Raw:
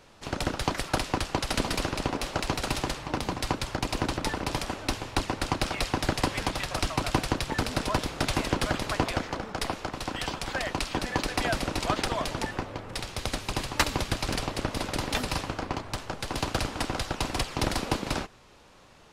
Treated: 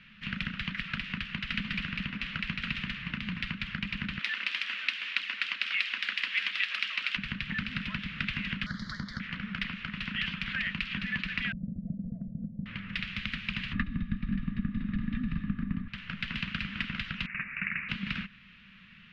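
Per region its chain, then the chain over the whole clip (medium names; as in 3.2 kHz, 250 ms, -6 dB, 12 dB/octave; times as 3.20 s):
4.19–7.17 s: high-pass 380 Hz 24 dB/octave + treble shelf 2.2 kHz +11 dB
8.66–9.20 s: Butterworth band-stop 2.6 kHz, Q 1.1 + high-order bell 5.5 kHz +11 dB 1 oct
11.52–12.66 s: rippled Chebyshev low-pass 700 Hz, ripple 6 dB + band-stop 400 Hz, Q 5.4
13.73–15.88 s: tilt EQ -4.5 dB/octave + small resonant body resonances 250/1200/1700/3700 Hz, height 13 dB, ringing for 30 ms
17.26–17.89 s: inverse Chebyshev high-pass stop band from 500 Hz, stop band 50 dB + frequency inversion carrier 3.6 kHz
whole clip: treble shelf 7.8 kHz -6 dB; compression 4:1, threshold -31 dBFS; FFT filter 120 Hz 0 dB, 200 Hz +15 dB, 330 Hz -17 dB, 560 Hz -19 dB, 800 Hz -23 dB, 1.2 kHz -1 dB, 1.8 kHz +11 dB, 2.8 kHz +13 dB, 7.9 kHz -23 dB; trim -4 dB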